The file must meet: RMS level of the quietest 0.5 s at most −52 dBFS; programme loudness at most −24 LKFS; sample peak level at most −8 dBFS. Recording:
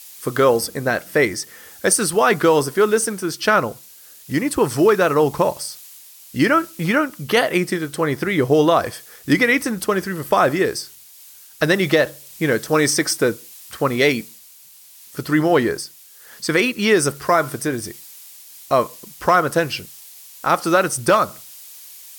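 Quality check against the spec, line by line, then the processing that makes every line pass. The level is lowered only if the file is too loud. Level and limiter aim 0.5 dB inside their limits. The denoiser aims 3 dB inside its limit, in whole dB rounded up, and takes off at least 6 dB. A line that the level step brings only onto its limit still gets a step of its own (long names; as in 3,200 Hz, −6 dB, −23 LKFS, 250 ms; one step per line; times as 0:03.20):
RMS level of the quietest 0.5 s −46 dBFS: out of spec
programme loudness −18.5 LKFS: out of spec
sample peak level −4.0 dBFS: out of spec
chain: broadband denoise 6 dB, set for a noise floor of −46 dBFS
level −6 dB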